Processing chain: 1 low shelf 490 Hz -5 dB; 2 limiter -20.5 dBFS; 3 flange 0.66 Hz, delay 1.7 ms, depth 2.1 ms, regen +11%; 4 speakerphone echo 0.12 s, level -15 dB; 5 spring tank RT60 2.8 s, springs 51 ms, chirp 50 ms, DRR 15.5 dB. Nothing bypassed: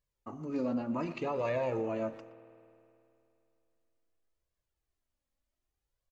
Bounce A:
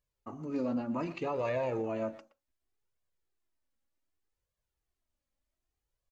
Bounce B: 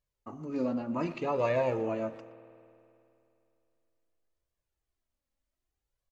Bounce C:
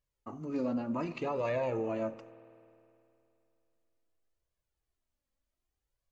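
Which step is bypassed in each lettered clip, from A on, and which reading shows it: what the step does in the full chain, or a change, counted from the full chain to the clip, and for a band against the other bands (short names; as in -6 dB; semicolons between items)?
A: 5, echo-to-direct -14.0 dB to -20.5 dB; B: 2, mean gain reduction 1.5 dB; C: 4, momentary loudness spread change -4 LU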